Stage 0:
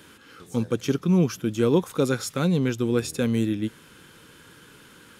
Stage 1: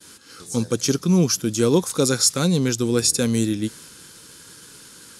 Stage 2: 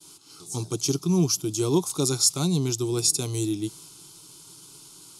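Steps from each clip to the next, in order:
expander -47 dBFS; high-order bell 6.8 kHz +13.5 dB; trim +2.5 dB
static phaser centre 340 Hz, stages 8; trim -2 dB

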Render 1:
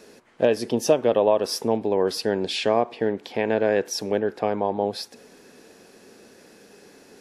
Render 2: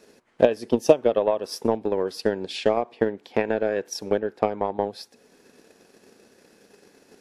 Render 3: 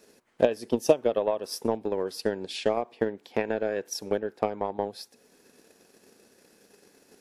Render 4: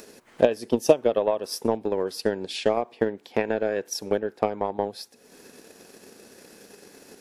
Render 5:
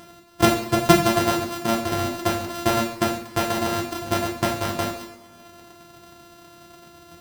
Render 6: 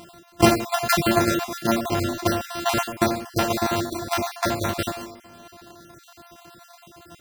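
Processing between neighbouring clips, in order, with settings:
transient shaper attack +11 dB, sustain -3 dB; trim -6 dB
treble shelf 7.7 kHz +9.5 dB; trim -4.5 dB
upward compressor, threshold -43 dBFS; trim +3 dB
sorted samples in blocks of 128 samples; two-slope reverb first 0.5 s, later 2 s, from -18 dB, DRR -2 dB; trim -1 dB
random holes in the spectrogram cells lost 33%; trim +2 dB

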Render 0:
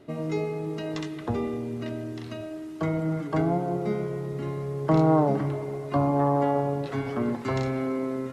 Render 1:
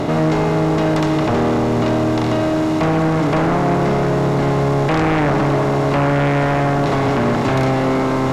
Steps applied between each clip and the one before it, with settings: spectral levelling over time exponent 0.4; in parallel at -1 dB: peak limiter -17.5 dBFS, peak gain reduction 9.5 dB; on the sum: sine folder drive 9 dB, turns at -5 dBFS; trim -7.5 dB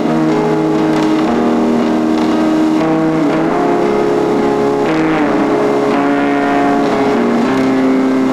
resonant low shelf 170 Hz -9 dB, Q 3; reverse echo 31 ms -5.5 dB; peak limiter -8 dBFS, peak gain reduction 5.5 dB; trim +3.5 dB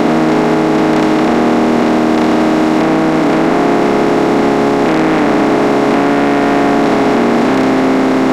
spectral levelling over time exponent 0.4; trim -2.5 dB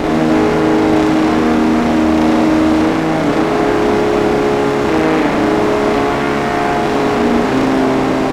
one-sided clip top -16 dBFS; on a send: loudspeakers at several distances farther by 13 m -1 dB, 49 m -3 dB; on the sum: trim -4 dB

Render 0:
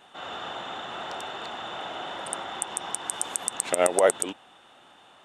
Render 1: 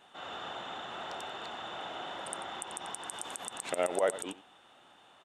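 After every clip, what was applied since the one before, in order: delay 90 ms -17.5 dB; peak limiter -11.5 dBFS, peak gain reduction 8 dB; trim -5.5 dB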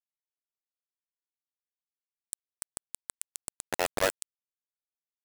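bit crusher 4-bit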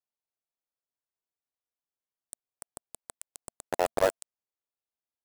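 FFT filter 230 Hz 0 dB, 680 Hz +5 dB, 2.2 kHz -6 dB

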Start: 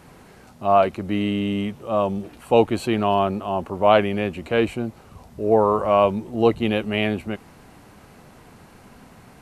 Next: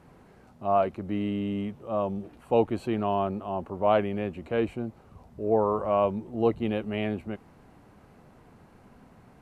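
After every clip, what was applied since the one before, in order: treble shelf 2.1 kHz -10.5 dB; trim -6 dB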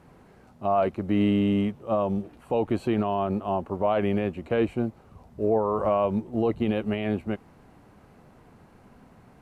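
peak limiter -21.5 dBFS, peak gain reduction 11.5 dB; upward expansion 1.5:1, over -42 dBFS; trim +8 dB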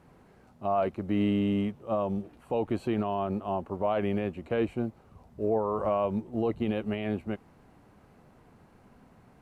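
short-mantissa float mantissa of 8-bit; trim -4 dB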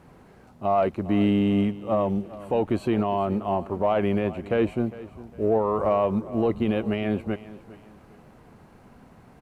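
in parallel at -11.5 dB: saturation -27.5 dBFS, distortion -11 dB; on the sum: feedback delay 405 ms, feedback 33%, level -17.5 dB; trim +4 dB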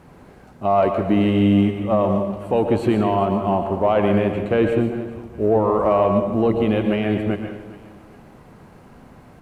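plate-style reverb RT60 0.77 s, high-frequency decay 0.75×, pre-delay 100 ms, DRR 5 dB; trim +4.5 dB

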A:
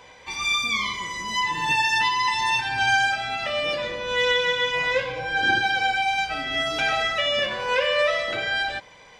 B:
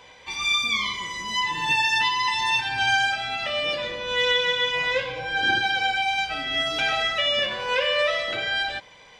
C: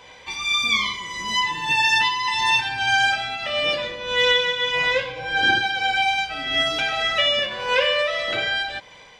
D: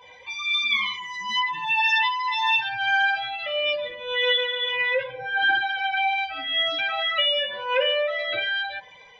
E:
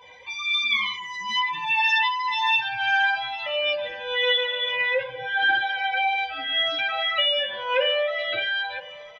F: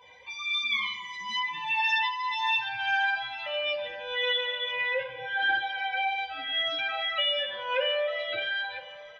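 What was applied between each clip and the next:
peaking EQ 3.3 kHz +4.5 dB 0.85 oct; trim -2 dB
tremolo triangle 1.7 Hz, depth 50%; trim +4.5 dB
spectral contrast enhancement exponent 1.9; de-hum 70.27 Hz, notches 35; trim -2 dB
feedback delay 999 ms, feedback 34%, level -19.5 dB
plate-style reverb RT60 1.8 s, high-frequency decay 0.9×, DRR 11.5 dB; trim -5.5 dB

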